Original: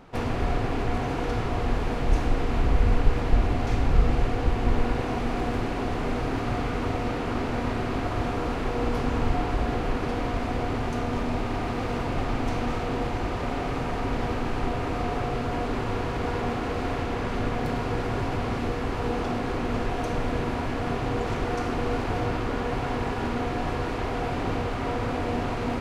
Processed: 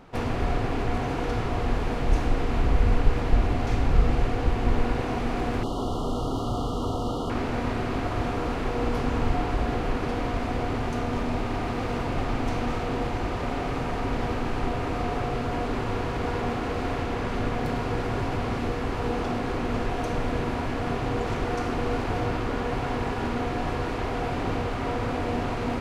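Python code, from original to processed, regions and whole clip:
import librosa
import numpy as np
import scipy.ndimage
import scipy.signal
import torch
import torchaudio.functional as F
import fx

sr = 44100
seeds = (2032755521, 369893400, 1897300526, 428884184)

y = fx.chain(x, sr, fx.high_shelf(hz=3600.0, db=3.5),
    fx.overload_stage(gain_db=21.0),
    fx.brickwall_bandstop(low_hz=1400.0, high_hz=2800.0), at=(5.63, 7.3))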